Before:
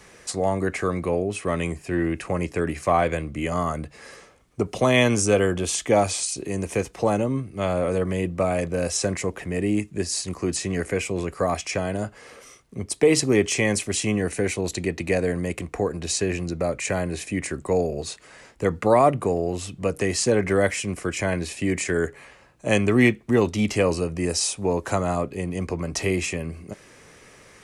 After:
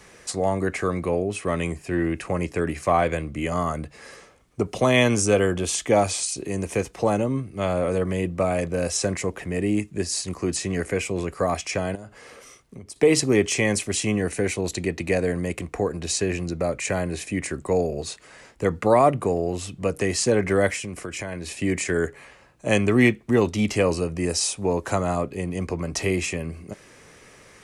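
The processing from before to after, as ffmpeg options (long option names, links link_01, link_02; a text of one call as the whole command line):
ffmpeg -i in.wav -filter_complex "[0:a]asettb=1/sr,asplit=3[link_01][link_02][link_03];[link_01]atrim=end=11.954[link_04];[link_02]atrim=start=11.95:end=12.96,asetpts=PTS-STARTPTS,afade=type=in:duration=0.004:curve=qsin,afade=type=out:start_time=1.006:duration=0.004:curve=qsin,acompressor=threshold=-35dB:ratio=12:attack=3.2:release=140:knee=1:detection=peak[link_05];[link_03]atrim=start=12.956[link_06];[link_04][link_05]acrossfade=duration=0.004:curve1=hsin:curve2=qsin[link_07];[link_07][link_06]acrossfade=duration=0.004:curve1=qsin:curve2=hsin,asettb=1/sr,asplit=3[link_08][link_09][link_10];[link_08]atrim=end=20.764[link_11];[link_09]atrim=start=20.76:end=21.58,asetpts=PTS-STARTPTS,afade=type=in:duration=0.004:curve=qsin,afade=type=out:start_time=0.816:duration=0.004:curve=qsin,acompressor=threshold=-28dB:ratio=5:attack=3.2:release=140:knee=1:detection=peak[link_12];[link_10]atrim=start=21.576[link_13];[link_11][link_12]acrossfade=duration=0.004:curve1=hsin:curve2=qsin[link_14];[link_14][link_13]acrossfade=duration=0.004:curve1=qsin:curve2=hsin" out.wav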